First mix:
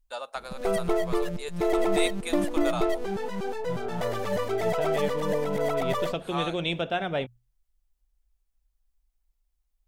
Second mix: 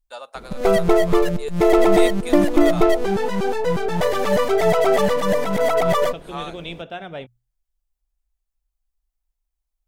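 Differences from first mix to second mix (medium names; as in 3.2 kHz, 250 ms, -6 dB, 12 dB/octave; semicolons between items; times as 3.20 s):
second voice -4.5 dB; background +10.0 dB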